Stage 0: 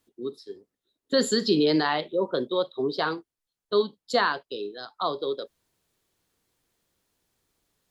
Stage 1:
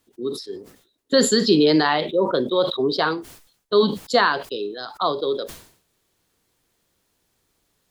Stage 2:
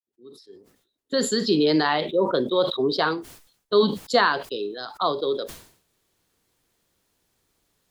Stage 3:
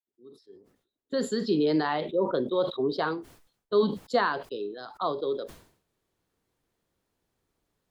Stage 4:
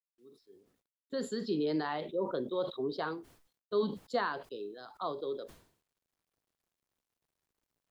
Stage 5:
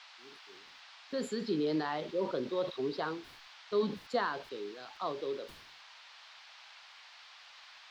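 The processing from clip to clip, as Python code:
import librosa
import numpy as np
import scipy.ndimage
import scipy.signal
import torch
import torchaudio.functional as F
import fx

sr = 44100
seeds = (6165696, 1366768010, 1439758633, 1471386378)

y1 = fx.sustainer(x, sr, db_per_s=100.0)
y1 = y1 * 10.0 ** (5.5 / 20.0)
y2 = fx.fade_in_head(y1, sr, length_s=2.14)
y2 = y2 * 10.0 ** (-1.5 / 20.0)
y3 = fx.high_shelf(y2, sr, hz=2100.0, db=-9.5)
y3 = y3 * 10.0 ** (-4.0 / 20.0)
y4 = fx.quant_dither(y3, sr, seeds[0], bits=12, dither='none')
y4 = y4 * 10.0 ** (-7.5 / 20.0)
y5 = fx.dmg_noise_band(y4, sr, seeds[1], low_hz=740.0, high_hz=4700.0, level_db=-55.0)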